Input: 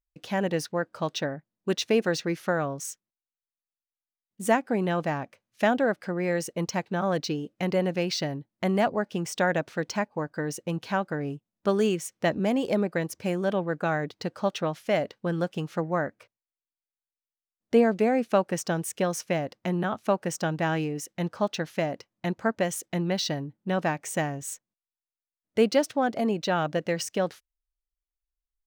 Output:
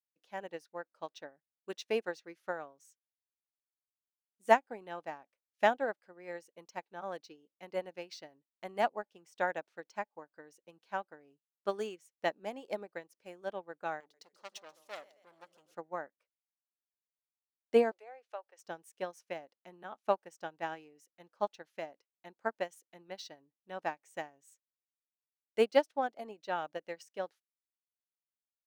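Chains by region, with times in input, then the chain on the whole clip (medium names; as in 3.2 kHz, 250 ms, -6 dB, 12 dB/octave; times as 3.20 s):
14.00–15.75 s: tone controls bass -6 dB, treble +12 dB + two-band feedback delay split 370 Hz, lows 83 ms, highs 134 ms, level -13 dB + transformer saturation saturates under 2.6 kHz
17.91–18.59 s: high-pass 480 Hz 24 dB/octave + low-pass that closes with the level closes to 2.8 kHz, closed at -20 dBFS + compression 1.5:1, threshold -35 dBFS
whole clip: high-pass 350 Hz 12 dB/octave; dynamic bell 850 Hz, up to +5 dB, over -44 dBFS, Q 5.2; upward expansion 2.5:1, over -35 dBFS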